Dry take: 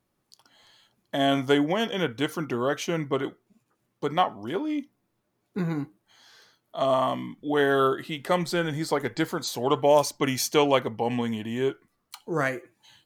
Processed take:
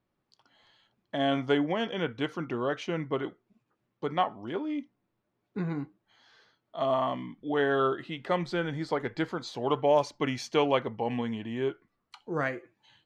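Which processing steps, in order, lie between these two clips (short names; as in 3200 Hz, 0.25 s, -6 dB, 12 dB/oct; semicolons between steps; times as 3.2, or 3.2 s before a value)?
LPF 3700 Hz 12 dB/oct; gain -4 dB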